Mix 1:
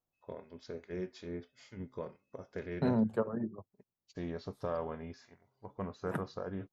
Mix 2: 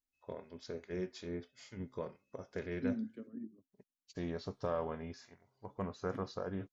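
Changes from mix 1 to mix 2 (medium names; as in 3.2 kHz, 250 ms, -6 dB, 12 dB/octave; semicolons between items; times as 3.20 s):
second voice: add vowel filter i; master: add treble shelf 5.4 kHz +8 dB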